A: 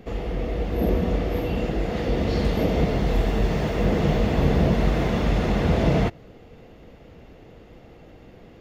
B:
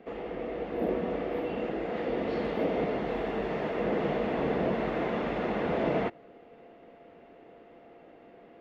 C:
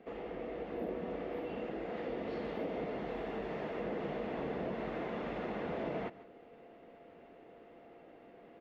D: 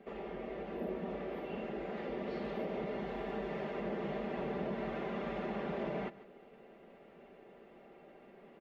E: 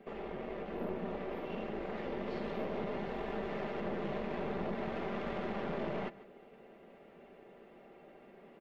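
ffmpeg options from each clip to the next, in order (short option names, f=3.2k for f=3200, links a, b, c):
-filter_complex "[0:a]acrossover=split=220 3000:gain=0.0794 1 0.1[a][b][c];[a][b][c]amix=inputs=3:normalize=0,aeval=exprs='val(0)+0.002*sin(2*PI*690*n/s)':c=same,volume=-3.5dB"
-af "areverse,acompressor=mode=upward:threshold=-46dB:ratio=2.5,areverse,aecho=1:1:147:0.0891,acompressor=threshold=-33dB:ratio=2,volume=-5dB"
-af "aecho=1:1:5.1:0.62,volume=-1dB"
-af "aeval=exprs='(tanh(56.2*val(0)+0.7)-tanh(0.7))/56.2':c=same,volume=4.5dB"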